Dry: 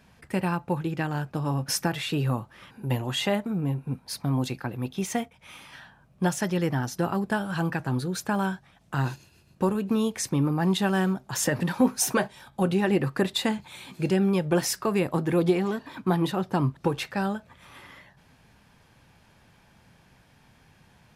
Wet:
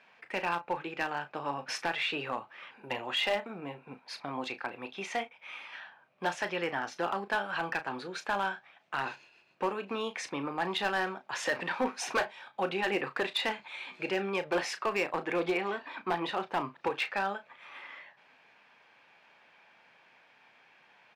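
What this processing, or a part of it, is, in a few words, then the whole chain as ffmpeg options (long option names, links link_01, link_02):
megaphone: -filter_complex "[0:a]highpass=560,lowpass=3300,equalizer=frequency=2400:width_type=o:width=0.52:gain=6,asoftclip=type=hard:threshold=-23dB,asplit=2[link_01][link_02];[link_02]adelay=35,volume=-11.5dB[link_03];[link_01][link_03]amix=inputs=2:normalize=0"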